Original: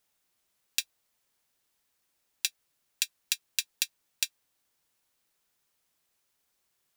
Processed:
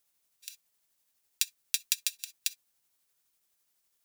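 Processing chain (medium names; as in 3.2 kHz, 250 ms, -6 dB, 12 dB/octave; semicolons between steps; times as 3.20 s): reverberation, pre-delay 3 ms, DRR 19.5 dB; granular stretch 0.58×, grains 168 ms; treble shelf 4.6 kHz +8 dB; trim -4 dB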